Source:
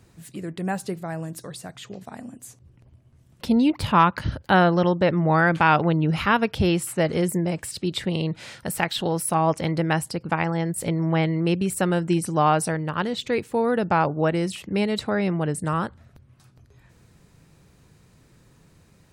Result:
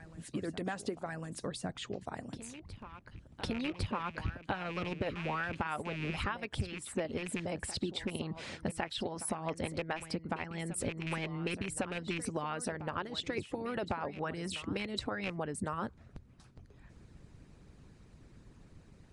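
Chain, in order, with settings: rattling part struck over -24 dBFS, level -18 dBFS; high shelf 8300 Hz -10 dB; harmonic-percussive split harmonic -17 dB; low shelf 270 Hz +8.5 dB; compressor 10:1, threshold -32 dBFS, peak gain reduction 19.5 dB; reverse echo 1.104 s -13.5 dB; MP3 160 kbps 24000 Hz

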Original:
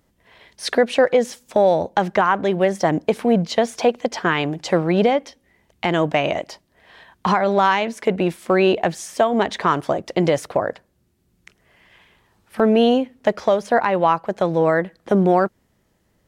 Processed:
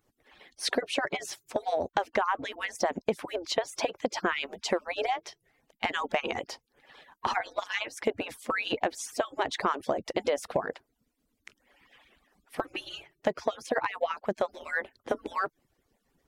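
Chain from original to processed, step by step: median-filter separation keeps percussive; compressor 3:1, threshold -22 dBFS, peak gain reduction 8 dB; gain -3 dB

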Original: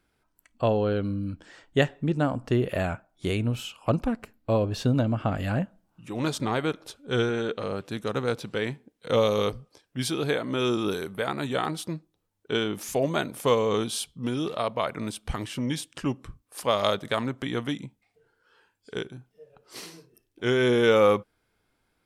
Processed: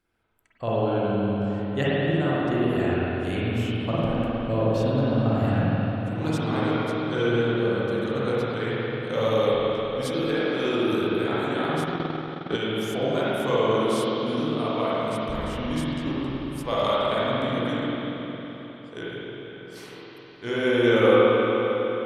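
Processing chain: spring tank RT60 4 s, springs 45/51 ms, chirp 65 ms, DRR -9.5 dB; 11.8–12.57 transient shaper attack +11 dB, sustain -11 dB; gain -7 dB

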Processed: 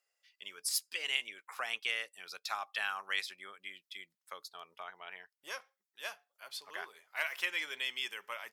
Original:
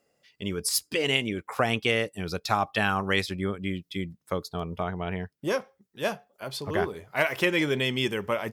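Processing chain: HPF 1300 Hz 12 dB/oct; gain -7 dB

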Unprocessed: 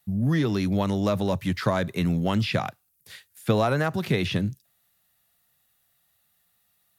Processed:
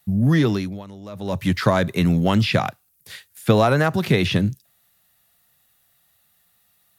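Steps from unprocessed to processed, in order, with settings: 0.48–1.44 dip -20 dB, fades 0.40 s quadratic; 2.49–3.69 short-mantissa float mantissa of 8-bit; gain +6 dB

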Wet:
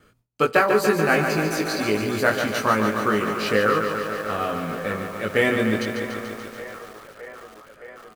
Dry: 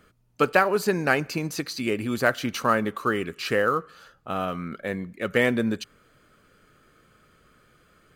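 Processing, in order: gate with hold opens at -55 dBFS; doubler 19 ms -2.5 dB; band-limited delay 0.614 s, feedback 75%, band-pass 900 Hz, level -12.5 dB; lo-fi delay 0.144 s, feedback 80%, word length 7-bit, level -7 dB

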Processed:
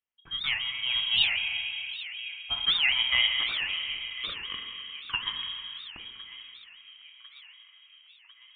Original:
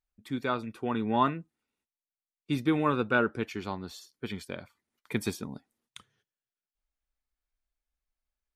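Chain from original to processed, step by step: elliptic high-pass 220 Hz; plate-style reverb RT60 3.8 s, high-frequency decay 0.55×, DRR 1.5 dB; inverted band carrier 3500 Hz; thin delay 1.049 s, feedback 60%, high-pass 1400 Hz, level -15.5 dB; record warp 78 rpm, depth 250 cents

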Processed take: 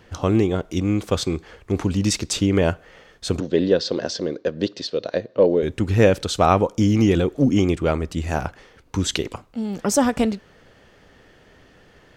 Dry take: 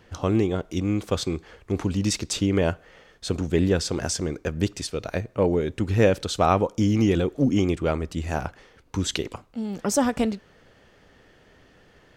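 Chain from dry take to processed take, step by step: 3.4–5.63 speaker cabinet 220–4900 Hz, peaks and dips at 530 Hz +7 dB, 830 Hz -7 dB, 1300 Hz -7 dB, 2300 Hz -9 dB, 4100 Hz +6 dB; gain +3.5 dB

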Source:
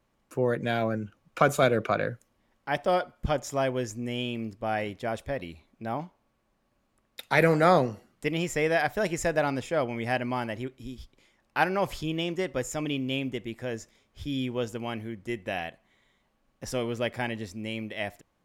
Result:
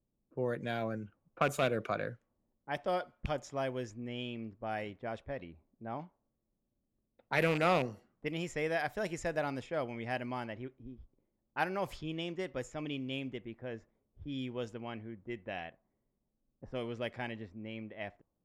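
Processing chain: rattling part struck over -27 dBFS, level -18 dBFS; low-pass opened by the level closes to 380 Hz, open at -24 dBFS; gain -8.5 dB

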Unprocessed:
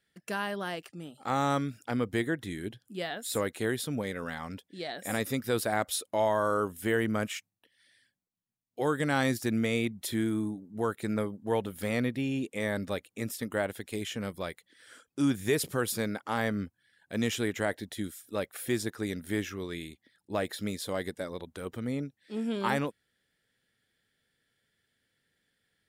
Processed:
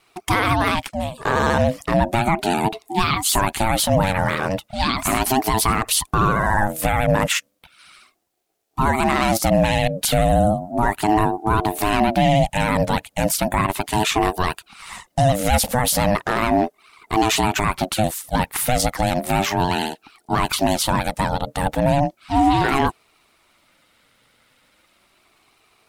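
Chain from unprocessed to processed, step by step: vibrato 14 Hz 93 cents; maximiser +25.5 dB; ring modulator with a swept carrier 460 Hz, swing 20%, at 0.35 Hz; gain -5 dB

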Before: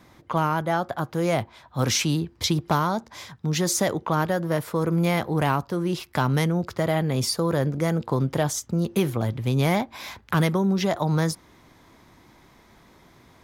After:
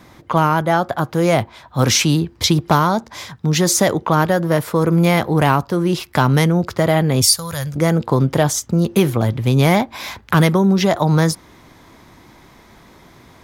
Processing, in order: 7.22–7.76 EQ curve 100 Hz 0 dB, 350 Hz -25 dB, 560 Hz -13 dB, 8400 Hz +8 dB; gain +8 dB

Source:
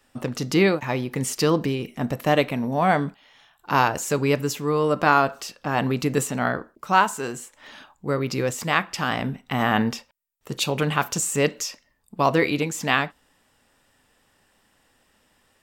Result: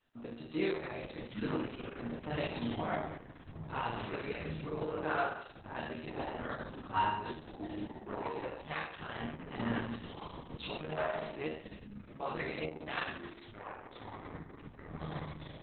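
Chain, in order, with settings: resonator bank D#2 sus4, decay 0.76 s; echoes that change speed 0.529 s, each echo -7 st, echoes 3, each echo -6 dB; gain +2 dB; Opus 6 kbps 48000 Hz

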